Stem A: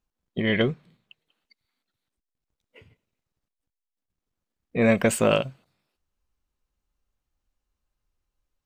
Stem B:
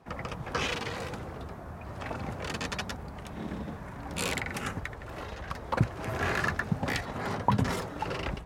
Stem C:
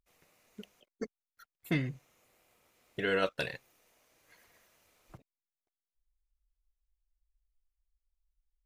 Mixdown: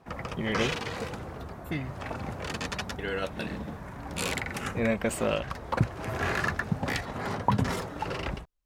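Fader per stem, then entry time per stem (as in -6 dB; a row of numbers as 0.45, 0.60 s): -7.5, +0.5, -2.5 dB; 0.00, 0.00, 0.00 s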